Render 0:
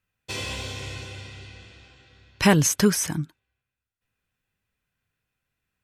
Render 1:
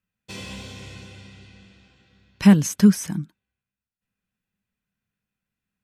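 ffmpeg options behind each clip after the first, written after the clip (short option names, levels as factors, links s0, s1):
-af "equalizer=f=200:t=o:w=0.47:g=14.5,volume=0.501"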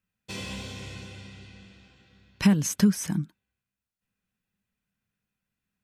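-af "acompressor=threshold=0.141:ratio=4"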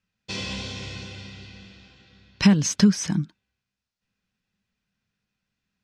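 -af "lowpass=f=5200:t=q:w=1.7,volume=1.5"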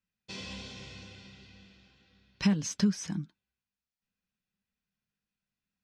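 -af "flanger=delay=3.6:depth=2.1:regen=-63:speed=1.9:shape=triangular,volume=0.501"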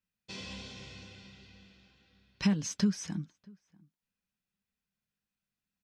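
-filter_complex "[0:a]asplit=2[s0][s1];[s1]adelay=641.4,volume=0.0501,highshelf=f=4000:g=-14.4[s2];[s0][s2]amix=inputs=2:normalize=0,volume=0.841"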